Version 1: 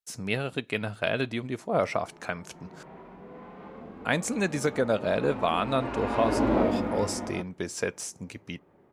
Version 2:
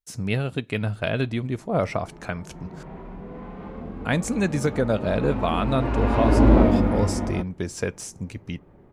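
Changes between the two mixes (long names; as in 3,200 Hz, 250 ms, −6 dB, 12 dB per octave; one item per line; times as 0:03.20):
background +3.5 dB
master: remove high-pass filter 350 Hz 6 dB per octave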